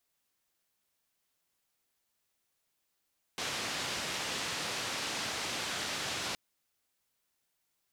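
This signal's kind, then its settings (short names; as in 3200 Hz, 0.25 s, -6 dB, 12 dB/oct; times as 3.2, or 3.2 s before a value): noise band 88–5100 Hz, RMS -36.5 dBFS 2.97 s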